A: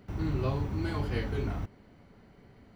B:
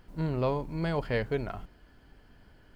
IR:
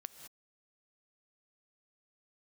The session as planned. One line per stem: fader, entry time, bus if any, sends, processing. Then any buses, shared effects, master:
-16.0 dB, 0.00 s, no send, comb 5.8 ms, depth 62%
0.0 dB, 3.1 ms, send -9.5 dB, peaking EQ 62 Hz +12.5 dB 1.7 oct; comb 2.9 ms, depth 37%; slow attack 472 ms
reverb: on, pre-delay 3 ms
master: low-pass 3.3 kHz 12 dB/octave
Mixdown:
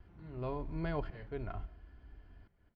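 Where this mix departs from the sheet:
stem A -16.0 dB -> -23.0 dB; stem B 0.0 dB -> -8.5 dB

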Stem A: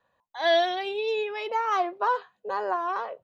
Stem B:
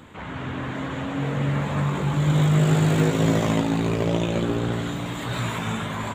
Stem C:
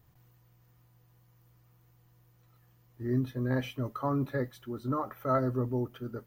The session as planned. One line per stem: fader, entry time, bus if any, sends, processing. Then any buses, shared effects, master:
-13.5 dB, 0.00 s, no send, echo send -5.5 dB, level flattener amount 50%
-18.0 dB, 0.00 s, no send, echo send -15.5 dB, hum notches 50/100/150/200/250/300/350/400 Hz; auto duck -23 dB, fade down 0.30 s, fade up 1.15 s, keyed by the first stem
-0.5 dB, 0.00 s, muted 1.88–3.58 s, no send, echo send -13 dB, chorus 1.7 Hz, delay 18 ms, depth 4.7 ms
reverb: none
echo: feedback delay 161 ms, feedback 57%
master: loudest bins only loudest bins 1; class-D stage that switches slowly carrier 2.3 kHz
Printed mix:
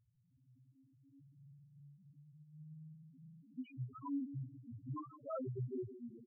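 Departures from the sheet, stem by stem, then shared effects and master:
stem A: muted; stem B -18.0 dB -> -29.5 dB; master: missing class-D stage that switches slowly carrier 2.3 kHz

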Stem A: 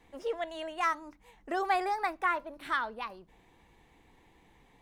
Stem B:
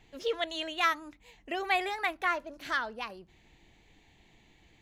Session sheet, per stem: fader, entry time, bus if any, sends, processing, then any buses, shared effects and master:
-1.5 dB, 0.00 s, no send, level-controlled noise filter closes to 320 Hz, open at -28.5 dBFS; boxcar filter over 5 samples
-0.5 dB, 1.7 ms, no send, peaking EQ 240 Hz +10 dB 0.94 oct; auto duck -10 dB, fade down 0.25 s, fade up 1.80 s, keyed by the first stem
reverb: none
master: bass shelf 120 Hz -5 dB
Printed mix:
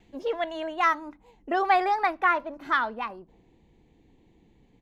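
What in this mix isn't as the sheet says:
stem A -1.5 dB -> +7.0 dB; stem B: polarity flipped

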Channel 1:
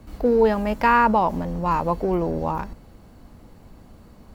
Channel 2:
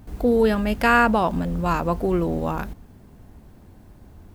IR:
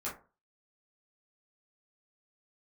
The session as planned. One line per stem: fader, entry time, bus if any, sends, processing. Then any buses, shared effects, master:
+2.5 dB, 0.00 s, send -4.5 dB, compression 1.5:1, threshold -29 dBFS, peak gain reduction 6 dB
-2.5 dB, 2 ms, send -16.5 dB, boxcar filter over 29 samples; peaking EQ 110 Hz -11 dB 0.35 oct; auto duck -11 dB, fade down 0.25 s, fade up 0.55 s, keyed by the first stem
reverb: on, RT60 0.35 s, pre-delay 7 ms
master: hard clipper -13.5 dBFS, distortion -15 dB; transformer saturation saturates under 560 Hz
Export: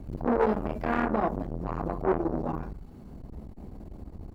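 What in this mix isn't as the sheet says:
stem 1 +2.5 dB -> -9.5 dB; stem 2 -2.5 dB -> +7.5 dB

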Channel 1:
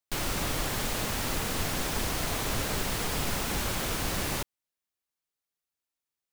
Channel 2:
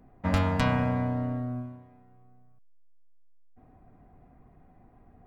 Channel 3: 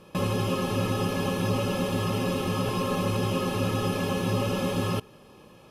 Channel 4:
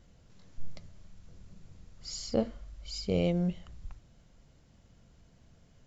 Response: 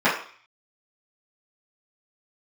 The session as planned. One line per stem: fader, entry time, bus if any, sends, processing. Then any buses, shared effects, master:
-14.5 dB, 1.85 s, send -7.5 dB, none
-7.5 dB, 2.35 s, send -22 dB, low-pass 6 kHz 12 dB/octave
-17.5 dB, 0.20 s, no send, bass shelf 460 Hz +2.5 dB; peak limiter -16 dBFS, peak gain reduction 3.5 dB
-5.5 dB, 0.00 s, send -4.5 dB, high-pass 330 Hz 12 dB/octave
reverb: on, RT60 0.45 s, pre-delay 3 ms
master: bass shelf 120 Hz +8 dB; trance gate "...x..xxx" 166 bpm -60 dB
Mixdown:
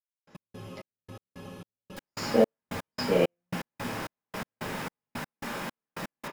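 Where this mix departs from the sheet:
stem 2 -7.5 dB -> -16.0 dB; master: missing bass shelf 120 Hz +8 dB

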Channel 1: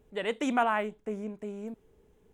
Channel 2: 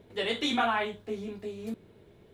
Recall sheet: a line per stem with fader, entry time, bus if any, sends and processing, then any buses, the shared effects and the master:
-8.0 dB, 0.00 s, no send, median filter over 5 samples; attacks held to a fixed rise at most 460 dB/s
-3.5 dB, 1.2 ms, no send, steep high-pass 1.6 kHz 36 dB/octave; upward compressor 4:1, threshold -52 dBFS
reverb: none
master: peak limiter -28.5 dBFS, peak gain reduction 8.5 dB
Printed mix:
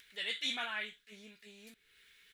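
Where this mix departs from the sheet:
stem 1 -8.0 dB -> -19.5 dB; master: missing peak limiter -28.5 dBFS, peak gain reduction 8.5 dB

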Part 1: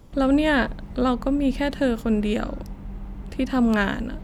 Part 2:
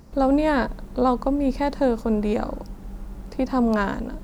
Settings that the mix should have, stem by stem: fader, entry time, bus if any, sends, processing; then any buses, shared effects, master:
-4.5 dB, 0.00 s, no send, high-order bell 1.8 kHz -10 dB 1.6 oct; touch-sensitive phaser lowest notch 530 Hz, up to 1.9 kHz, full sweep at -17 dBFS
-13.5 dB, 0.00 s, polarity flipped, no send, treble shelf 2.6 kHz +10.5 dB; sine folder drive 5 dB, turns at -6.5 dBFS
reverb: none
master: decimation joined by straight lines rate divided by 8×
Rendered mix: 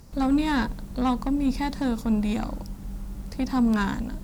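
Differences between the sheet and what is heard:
stem 2: polarity flipped; master: missing decimation joined by straight lines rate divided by 8×

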